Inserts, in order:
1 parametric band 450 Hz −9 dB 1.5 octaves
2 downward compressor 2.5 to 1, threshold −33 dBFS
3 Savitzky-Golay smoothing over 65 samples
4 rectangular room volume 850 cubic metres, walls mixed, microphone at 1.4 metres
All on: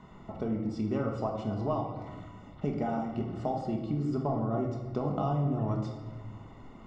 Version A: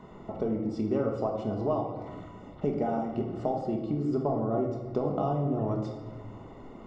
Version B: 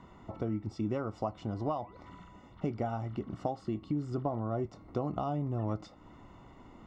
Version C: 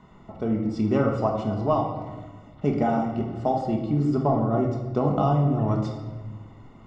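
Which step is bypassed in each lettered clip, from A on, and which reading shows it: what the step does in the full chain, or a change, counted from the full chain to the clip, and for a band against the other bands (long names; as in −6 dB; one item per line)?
1, 500 Hz band +4.5 dB
4, change in momentary loudness spread +5 LU
2, average gain reduction 4.5 dB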